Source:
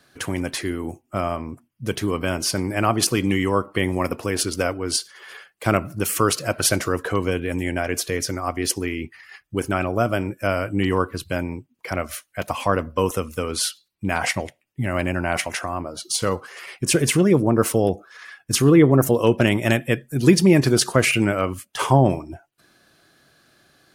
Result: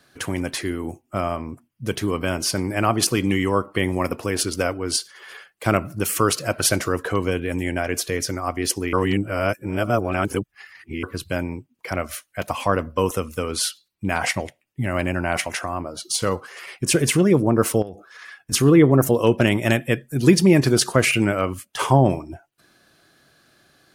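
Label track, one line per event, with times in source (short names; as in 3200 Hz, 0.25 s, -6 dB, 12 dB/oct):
8.930000	11.030000	reverse
17.820000	18.520000	compressor 10:1, threshold -29 dBFS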